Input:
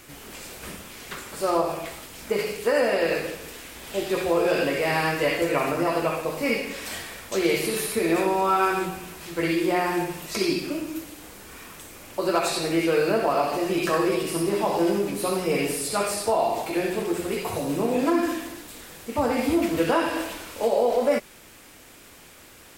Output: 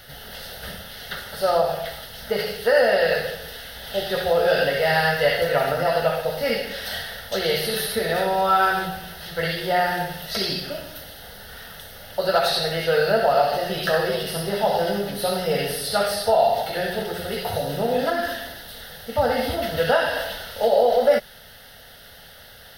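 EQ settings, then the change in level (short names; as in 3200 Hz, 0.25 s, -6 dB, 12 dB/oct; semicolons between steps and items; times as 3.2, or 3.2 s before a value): bell 3100 Hz +3 dB 1.5 oct; fixed phaser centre 1600 Hz, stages 8; +6.0 dB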